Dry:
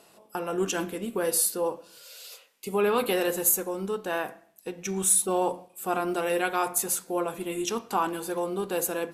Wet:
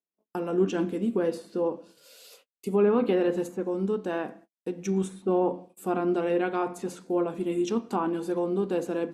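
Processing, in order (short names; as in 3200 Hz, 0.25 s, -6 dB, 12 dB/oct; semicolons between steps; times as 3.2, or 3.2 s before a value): treble ducked by the level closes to 2000 Hz, closed at -20 dBFS; gate -50 dBFS, range -44 dB; bell 250 Hz +14.5 dB 1.9 oct; gain -6.5 dB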